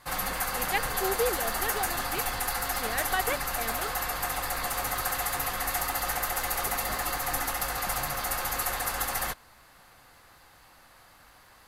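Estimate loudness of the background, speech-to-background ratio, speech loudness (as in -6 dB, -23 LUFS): -29.5 LUFS, -4.5 dB, -34.0 LUFS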